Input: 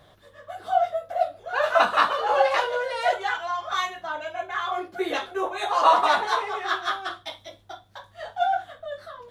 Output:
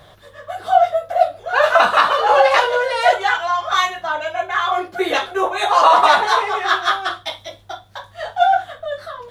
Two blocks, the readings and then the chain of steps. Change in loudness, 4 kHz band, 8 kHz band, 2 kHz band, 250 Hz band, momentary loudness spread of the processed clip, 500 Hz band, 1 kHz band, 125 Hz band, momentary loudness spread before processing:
+8.0 dB, +9.0 dB, +9.0 dB, +9.0 dB, +6.0 dB, 17 LU, +8.0 dB, +8.0 dB, can't be measured, 19 LU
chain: parametric band 270 Hz −5 dB 1 octave
boost into a limiter +10.5 dB
level −1 dB

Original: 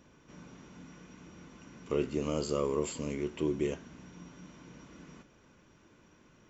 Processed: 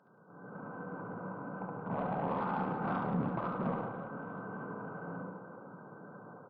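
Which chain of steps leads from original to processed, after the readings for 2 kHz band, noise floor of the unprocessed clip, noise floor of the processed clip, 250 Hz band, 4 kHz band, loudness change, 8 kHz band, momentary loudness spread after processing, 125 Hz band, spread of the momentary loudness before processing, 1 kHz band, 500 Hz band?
+5.5 dB, −62 dBFS, −55 dBFS, −1.0 dB, below −10 dB, −4.5 dB, can't be measured, 16 LU, +2.0 dB, 20 LU, +10.5 dB, −5.5 dB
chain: neighbouring bands swapped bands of 2,000 Hz
brick-wall band-pass 100–1,600 Hz
parametric band 180 Hz +13.5 dB 0.53 octaves
hum removal 199.4 Hz, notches 39
brickwall limiter −45 dBFS, peak gain reduction 10 dB
automatic gain control gain up to 12.5 dB
single-tap delay 74 ms −6.5 dB
harmonic generator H 5 −23 dB, 6 −28 dB, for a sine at −28.5 dBFS
on a send: reverse bouncing-ball delay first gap 70 ms, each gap 1.5×, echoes 5
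on the sum: level +5 dB
MP3 32 kbit/s 12,000 Hz

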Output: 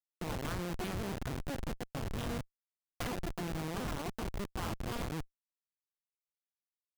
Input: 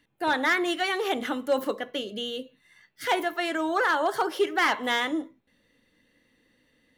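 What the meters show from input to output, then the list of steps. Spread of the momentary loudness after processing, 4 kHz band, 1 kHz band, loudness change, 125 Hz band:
4 LU, −15.0 dB, −16.5 dB, −13.0 dB, can't be measured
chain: sub-harmonics by changed cycles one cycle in 2, muted
parametric band 1,900 Hz −12 dB 0.24 octaves
downward compressor 4 to 1, threshold −43 dBFS, peak gain reduction 18.5 dB
steady tone 670 Hz −51 dBFS
comparator with hysteresis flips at −40.5 dBFS
level +10 dB

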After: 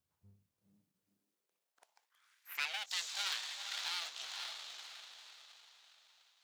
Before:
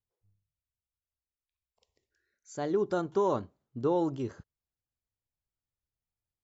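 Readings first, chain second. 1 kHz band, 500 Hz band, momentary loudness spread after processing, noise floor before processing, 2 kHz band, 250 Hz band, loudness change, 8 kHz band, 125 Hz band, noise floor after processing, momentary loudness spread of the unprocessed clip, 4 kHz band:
−12.5 dB, −33.0 dB, 18 LU, below −85 dBFS, +9.0 dB, below −40 dB, −8.5 dB, can't be measured, below −30 dB, below −85 dBFS, 11 LU, +17.5 dB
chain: feedback delay with all-pass diffusion 505 ms, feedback 44%, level −3.5 dB
full-wave rectification
high-pass filter sweep 86 Hz → 3,800 Hz, 0:00.46–0:02.92
level +6.5 dB

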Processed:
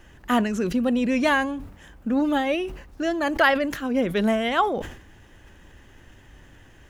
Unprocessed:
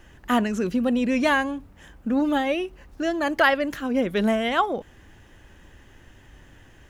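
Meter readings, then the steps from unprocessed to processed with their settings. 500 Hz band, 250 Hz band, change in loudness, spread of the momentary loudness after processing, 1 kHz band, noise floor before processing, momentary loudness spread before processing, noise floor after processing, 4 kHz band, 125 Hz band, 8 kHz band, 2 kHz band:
+0.5 dB, 0.0 dB, 0.0 dB, 11 LU, +0.5 dB, −52 dBFS, 10 LU, −51 dBFS, 0.0 dB, +1.5 dB, +1.0 dB, 0.0 dB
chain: level that may fall only so fast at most 87 dB per second

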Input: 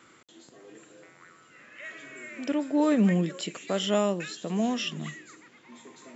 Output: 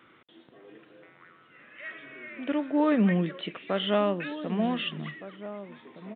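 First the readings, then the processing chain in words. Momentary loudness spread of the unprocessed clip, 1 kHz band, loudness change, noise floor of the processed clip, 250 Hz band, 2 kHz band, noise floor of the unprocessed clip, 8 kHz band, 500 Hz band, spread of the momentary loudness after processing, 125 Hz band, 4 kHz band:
19 LU, +1.5 dB, −1.0 dB, −59 dBFS, −0.5 dB, +1.5 dB, −57 dBFS, can't be measured, 0.0 dB, 18 LU, −0.5 dB, −0.5 dB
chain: downsampling to 8,000 Hz
dynamic equaliser 1,400 Hz, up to +4 dB, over −43 dBFS, Q 0.88
slap from a distant wall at 260 metres, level −13 dB
level −1 dB

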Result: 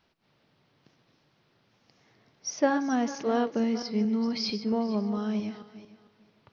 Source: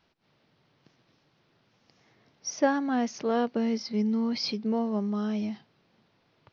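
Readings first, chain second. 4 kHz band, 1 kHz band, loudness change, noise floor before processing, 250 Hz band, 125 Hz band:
0.0 dB, 0.0 dB, 0.0 dB, −70 dBFS, 0.0 dB, can't be measured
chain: feedback delay that plays each chunk backwards 225 ms, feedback 42%, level −11.5 dB
hum removal 163.4 Hz, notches 33

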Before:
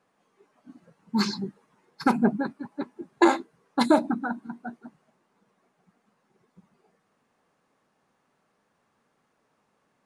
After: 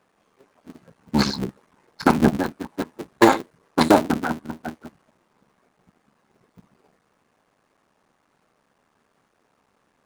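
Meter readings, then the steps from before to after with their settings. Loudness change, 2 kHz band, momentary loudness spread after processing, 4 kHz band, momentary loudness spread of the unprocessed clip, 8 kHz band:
+4.5 dB, +5.5 dB, 16 LU, +5.5 dB, 16 LU, +7.5 dB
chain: sub-harmonics by changed cycles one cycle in 3, muted
level +6.5 dB

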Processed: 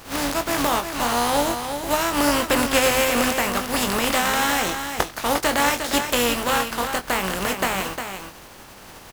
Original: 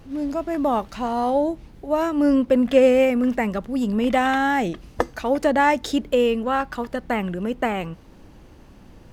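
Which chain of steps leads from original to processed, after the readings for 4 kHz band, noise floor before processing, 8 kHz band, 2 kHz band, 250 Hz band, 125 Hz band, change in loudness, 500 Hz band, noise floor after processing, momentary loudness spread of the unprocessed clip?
+11.0 dB, −47 dBFS, +18.5 dB, +4.5 dB, −5.0 dB, +1.0 dB, 0.0 dB, −3.5 dB, −43 dBFS, 10 LU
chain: compressing power law on the bin magnitudes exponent 0.41
parametric band 1,000 Hz +5 dB 1.8 octaves
downward compressor 2 to 1, threshold −21 dBFS, peak gain reduction 7.5 dB
double-tracking delay 21 ms −8 dB
single-tap delay 355 ms −7.5 dB

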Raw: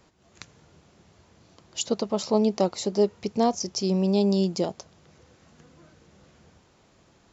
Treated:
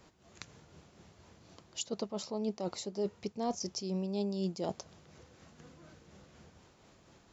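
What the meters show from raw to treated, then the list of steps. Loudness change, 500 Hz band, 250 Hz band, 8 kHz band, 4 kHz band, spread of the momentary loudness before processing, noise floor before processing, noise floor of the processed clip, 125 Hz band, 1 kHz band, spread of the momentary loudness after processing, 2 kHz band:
−12.0 dB, −12.5 dB, −12.0 dB, can't be measured, −9.5 dB, 8 LU, −61 dBFS, −63 dBFS, −11.0 dB, −12.0 dB, 21 LU, −8.5 dB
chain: reversed playback
downward compressor 4 to 1, threshold −32 dBFS, peak gain reduction 13.5 dB
reversed playback
shaped tremolo triangle 4.1 Hz, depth 40%

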